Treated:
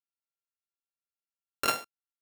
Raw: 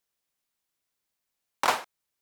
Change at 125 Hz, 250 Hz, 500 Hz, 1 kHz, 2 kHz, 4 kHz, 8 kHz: +2.5 dB, +0.5 dB, -3.5 dB, -6.0 dB, -4.0 dB, -1.0 dB, +0.5 dB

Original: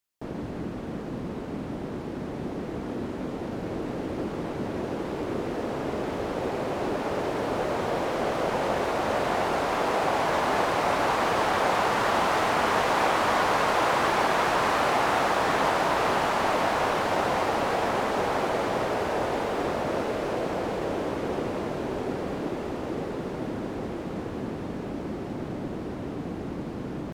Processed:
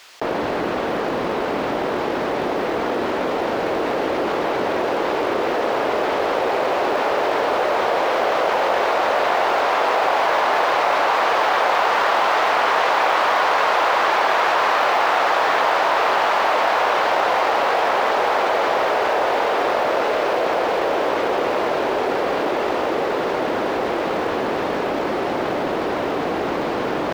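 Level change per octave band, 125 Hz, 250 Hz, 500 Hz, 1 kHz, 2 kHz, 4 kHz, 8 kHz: no reading, +3.0 dB, +8.0 dB, +8.5 dB, +9.0 dB, +8.0 dB, +2.0 dB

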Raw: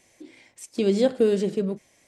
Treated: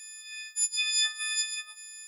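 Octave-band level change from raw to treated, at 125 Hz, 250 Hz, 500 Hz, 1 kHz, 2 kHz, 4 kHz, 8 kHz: under -40 dB, under -40 dB, under -40 dB, -11.0 dB, +10.0 dB, +12.0 dB, +16.0 dB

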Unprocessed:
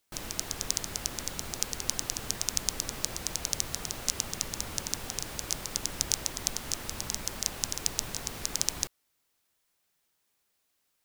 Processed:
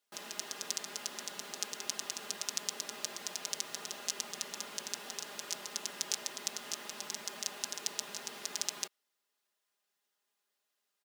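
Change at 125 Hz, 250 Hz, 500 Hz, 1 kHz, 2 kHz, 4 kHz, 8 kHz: -21.5 dB, -10.0 dB, -5.0 dB, -4.0 dB, -3.5 dB, -4.5 dB, -7.0 dB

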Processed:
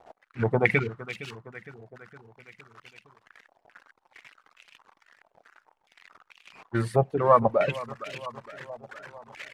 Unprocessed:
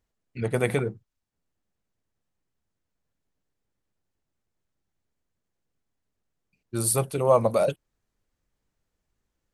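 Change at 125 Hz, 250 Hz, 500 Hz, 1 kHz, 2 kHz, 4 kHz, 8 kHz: +0.5 dB, +1.0 dB, -0.5 dB, +5.0 dB, +8.0 dB, -0.5 dB, under -20 dB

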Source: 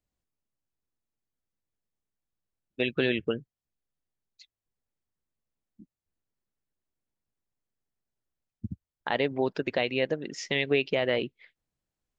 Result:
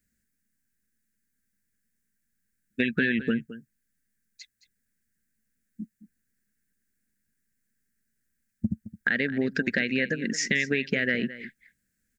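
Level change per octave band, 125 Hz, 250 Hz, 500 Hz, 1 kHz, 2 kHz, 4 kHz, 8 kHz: +2.5 dB, +5.5 dB, -4.5 dB, -11.5 dB, +6.5 dB, -2.0 dB, no reading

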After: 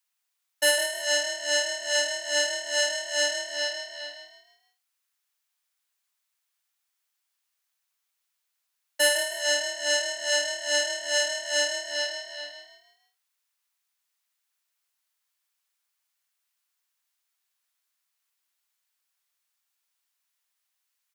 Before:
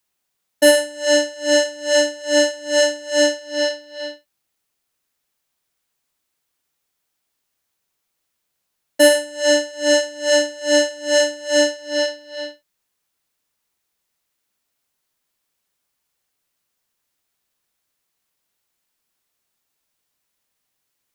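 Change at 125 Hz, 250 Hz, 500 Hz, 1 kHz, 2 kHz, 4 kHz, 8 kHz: no reading, -25.0 dB, -13.5 dB, -7.5 dB, -4.0 dB, -4.0 dB, -4.0 dB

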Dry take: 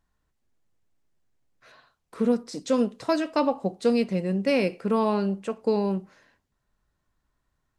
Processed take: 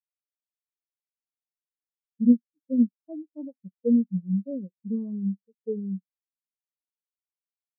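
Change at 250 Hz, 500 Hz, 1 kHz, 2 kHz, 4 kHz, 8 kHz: +1.5 dB, -11.5 dB, under -35 dB, under -40 dB, under -40 dB, under -30 dB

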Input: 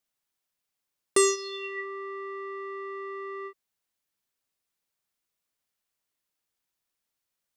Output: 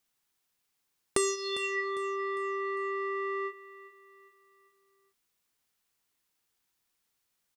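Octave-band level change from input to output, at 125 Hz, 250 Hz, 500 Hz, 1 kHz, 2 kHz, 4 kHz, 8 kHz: no reading, -2.0 dB, -2.0 dB, +1.0 dB, +2.0 dB, -1.5 dB, -6.0 dB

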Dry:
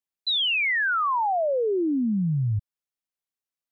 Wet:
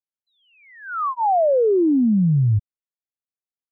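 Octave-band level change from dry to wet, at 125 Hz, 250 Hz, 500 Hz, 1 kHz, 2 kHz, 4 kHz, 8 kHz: +7.0 dB, +7.0 dB, +7.0 dB, +3.0 dB, -14.5 dB, under -35 dB, no reading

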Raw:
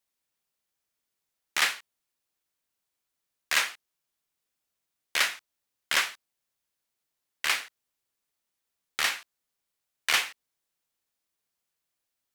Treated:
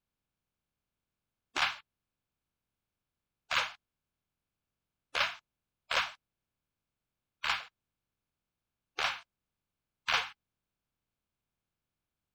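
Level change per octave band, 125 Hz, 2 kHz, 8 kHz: no reading, -6.0 dB, -15.0 dB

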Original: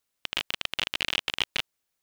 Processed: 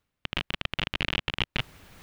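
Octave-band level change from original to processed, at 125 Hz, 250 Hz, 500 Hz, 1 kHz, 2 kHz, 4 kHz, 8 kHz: +13.5 dB, +8.5 dB, +2.5 dB, +1.5 dB, -0.5 dB, -3.0 dB, -10.0 dB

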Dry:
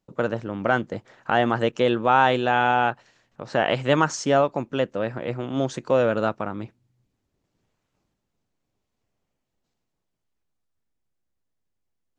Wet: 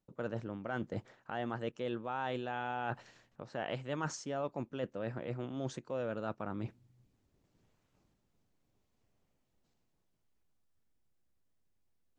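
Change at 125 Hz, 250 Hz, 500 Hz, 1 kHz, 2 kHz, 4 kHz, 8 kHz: -12.0 dB, -14.0 dB, -16.5 dB, -18.5 dB, -18.0 dB, -17.5 dB, -13.0 dB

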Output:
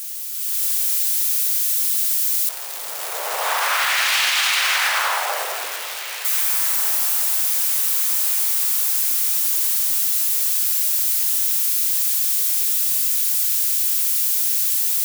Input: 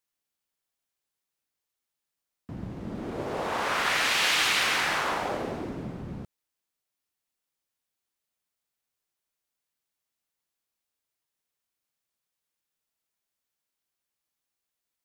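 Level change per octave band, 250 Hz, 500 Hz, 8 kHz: under -20 dB, +1.5 dB, +20.5 dB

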